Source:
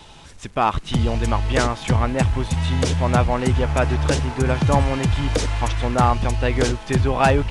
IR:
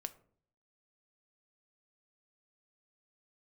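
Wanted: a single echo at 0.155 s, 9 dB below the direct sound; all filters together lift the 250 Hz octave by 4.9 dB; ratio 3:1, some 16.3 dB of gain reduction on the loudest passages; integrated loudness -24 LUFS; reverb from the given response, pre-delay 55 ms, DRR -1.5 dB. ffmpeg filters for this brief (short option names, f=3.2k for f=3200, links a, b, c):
-filter_complex "[0:a]equalizer=f=250:t=o:g=6,acompressor=threshold=-34dB:ratio=3,aecho=1:1:155:0.355,asplit=2[a][b];[1:a]atrim=start_sample=2205,adelay=55[c];[b][c]afir=irnorm=-1:irlink=0,volume=4.5dB[d];[a][d]amix=inputs=2:normalize=0,volume=5dB"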